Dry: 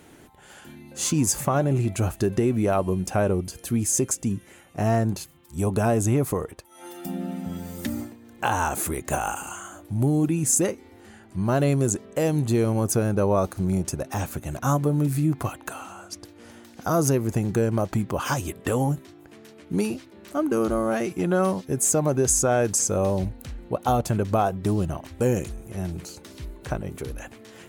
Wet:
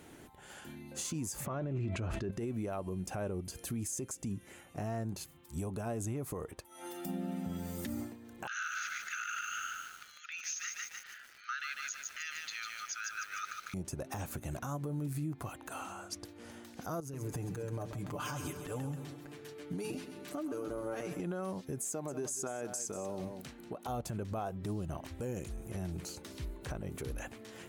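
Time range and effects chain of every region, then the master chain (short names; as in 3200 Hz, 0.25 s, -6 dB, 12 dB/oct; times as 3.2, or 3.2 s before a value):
1.46–2.31 LPF 3300 Hz + notch 790 Hz, Q 7.2 + fast leveller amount 100%
8.47–13.74 overdrive pedal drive 11 dB, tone 4200 Hz, clips at -8 dBFS + brick-wall FIR band-pass 1200–6800 Hz + lo-fi delay 0.149 s, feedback 55%, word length 8-bit, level -4 dB
17–21.2 comb 6.8 ms, depth 73% + compressor 16:1, threshold -29 dBFS + feedback echo 0.134 s, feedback 56%, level -11 dB
21.89–23.87 HPF 190 Hz + notch 530 Hz, Q 8.7 + echo 0.188 s -13.5 dB
whole clip: compressor 4:1, threshold -30 dBFS; limiter -25 dBFS; gain -4 dB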